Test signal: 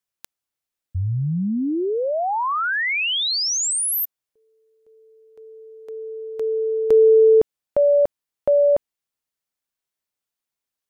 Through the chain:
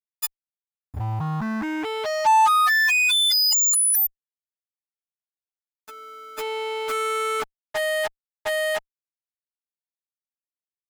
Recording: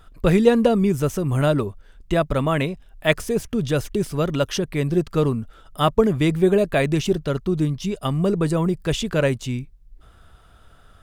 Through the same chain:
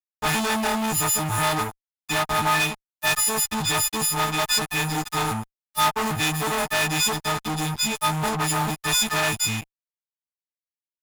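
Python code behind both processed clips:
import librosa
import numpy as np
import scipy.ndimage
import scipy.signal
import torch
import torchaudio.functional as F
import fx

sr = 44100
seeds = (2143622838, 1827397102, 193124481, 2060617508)

y = fx.freq_snap(x, sr, grid_st=6)
y = fx.fuzz(y, sr, gain_db=26.0, gate_db=-33.0)
y = fx.low_shelf_res(y, sr, hz=660.0, db=-6.0, q=3.0)
y = y * librosa.db_to_amplitude(-5.0)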